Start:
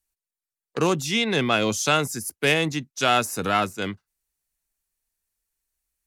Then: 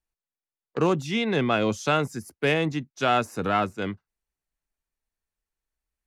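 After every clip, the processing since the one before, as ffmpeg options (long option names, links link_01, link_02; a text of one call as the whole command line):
ffmpeg -i in.wav -af "lowpass=frequency=1600:poles=1" out.wav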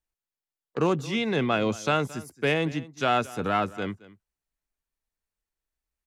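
ffmpeg -i in.wav -af "aecho=1:1:222:0.106,volume=-1.5dB" out.wav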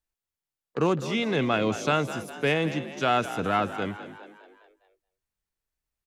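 ffmpeg -i in.wav -filter_complex "[0:a]asplit=6[link_01][link_02][link_03][link_04][link_05][link_06];[link_02]adelay=205,afreqshift=55,volume=-13dB[link_07];[link_03]adelay=410,afreqshift=110,volume=-18.7dB[link_08];[link_04]adelay=615,afreqshift=165,volume=-24.4dB[link_09];[link_05]adelay=820,afreqshift=220,volume=-30dB[link_10];[link_06]adelay=1025,afreqshift=275,volume=-35.7dB[link_11];[link_01][link_07][link_08][link_09][link_10][link_11]amix=inputs=6:normalize=0" out.wav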